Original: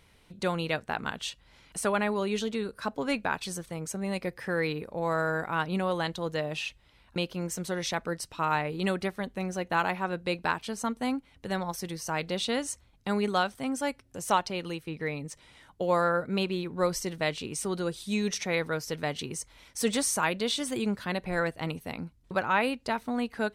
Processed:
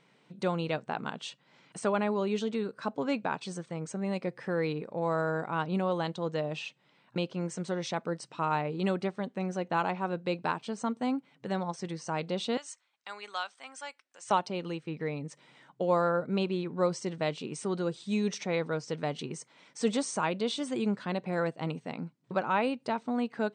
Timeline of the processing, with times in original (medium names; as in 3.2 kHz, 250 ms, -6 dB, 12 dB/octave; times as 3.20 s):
12.57–14.31 s: high-pass 1.3 kHz
whole clip: dynamic bell 1.8 kHz, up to -6 dB, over -45 dBFS, Q 2; FFT band-pass 120–8900 Hz; treble shelf 3.1 kHz -8.5 dB